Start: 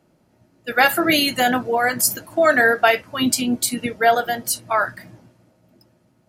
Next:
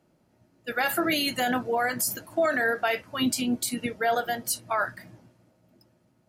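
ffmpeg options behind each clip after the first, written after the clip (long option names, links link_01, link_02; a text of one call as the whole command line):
ffmpeg -i in.wav -af "alimiter=limit=-10.5dB:level=0:latency=1:release=37,volume=-5.5dB" out.wav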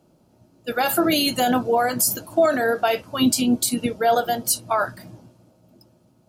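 ffmpeg -i in.wav -af "equalizer=frequency=1900:width_type=o:width=0.67:gain=-12,volume=7.5dB" out.wav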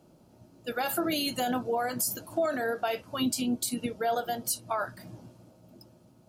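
ffmpeg -i in.wav -af "acompressor=threshold=-44dB:ratio=1.5" out.wav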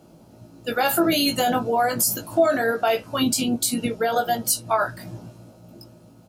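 ffmpeg -i in.wav -filter_complex "[0:a]asplit=2[link_01][link_02];[link_02]adelay=18,volume=-5dB[link_03];[link_01][link_03]amix=inputs=2:normalize=0,volume=7.5dB" out.wav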